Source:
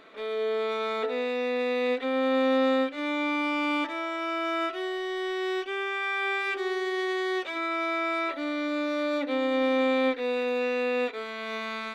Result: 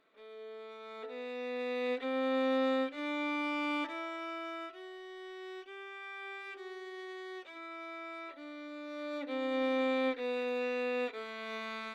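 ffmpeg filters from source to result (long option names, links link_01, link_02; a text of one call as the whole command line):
ffmpeg -i in.wav -af "volume=2dB,afade=type=in:start_time=0.82:duration=1.14:silence=0.251189,afade=type=out:start_time=3.87:duration=0.86:silence=0.354813,afade=type=in:start_time=8.82:duration=0.78:silence=0.354813" out.wav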